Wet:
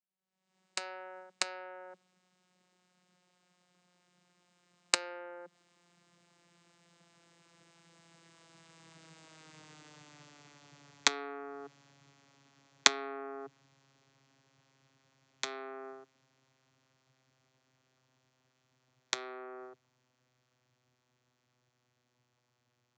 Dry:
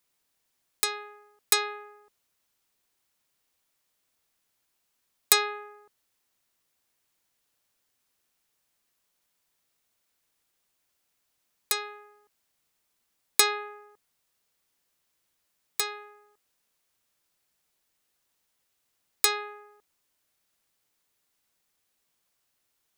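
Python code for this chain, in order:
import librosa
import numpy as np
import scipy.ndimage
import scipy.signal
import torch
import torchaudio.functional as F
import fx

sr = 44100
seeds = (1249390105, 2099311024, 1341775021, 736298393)

y = fx.vocoder_glide(x, sr, note=53, semitones=-5)
y = fx.doppler_pass(y, sr, speed_mps=25, closest_m=22.0, pass_at_s=9.72)
y = fx.recorder_agc(y, sr, target_db=-28.5, rise_db_per_s=51.0, max_gain_db=30)
y = fx.peak_eq(y, sr, hz=410.0, db=-3.0, octaves=0.77)
y = y * 10.0 ** (-2.0 / 20.0)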